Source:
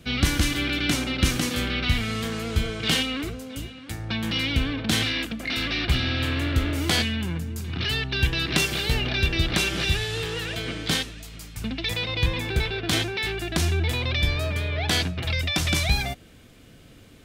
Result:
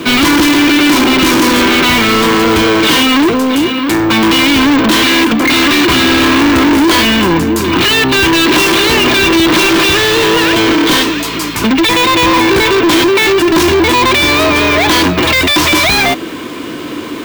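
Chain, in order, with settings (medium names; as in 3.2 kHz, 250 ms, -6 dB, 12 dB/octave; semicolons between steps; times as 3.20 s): small resonant body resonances 320/1000 Hz, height 16 dB, ringing for 30 ms; overdrive pedal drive 36 dB, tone 4.7 kHz, clips at -0.5 dBFS; careless resampling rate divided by 2×, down none, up hold; trim -1 dB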